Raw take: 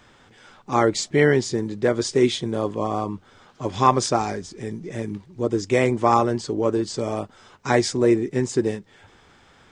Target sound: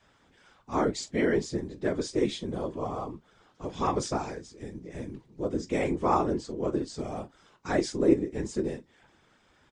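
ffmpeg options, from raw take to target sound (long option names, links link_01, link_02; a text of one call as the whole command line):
ffmpeg -i in.wav -af "aecho=1:1:17|45:0.398|0.15,afftfilt=real='hypot(re,im)*cos(2*PI*random(0))':imag='hypot(re,im)*sin(2*PI*random(1))':win_size=512:overlap=0.75,adynamicequalizer=threshold=0.0178:dfrequency=300:dqfactor=0.94:tfrequency=300:tqfactor=0.94:attack=5:release=100:ratio=0.375:range=2:mode=boostabove:tftype=bell,volume=-5dB" out.wav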